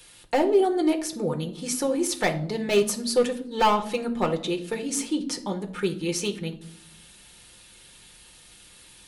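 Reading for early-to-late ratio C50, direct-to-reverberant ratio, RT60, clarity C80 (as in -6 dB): 13.5 dB, 3.0 dB, 0.70 s, 17.5 dB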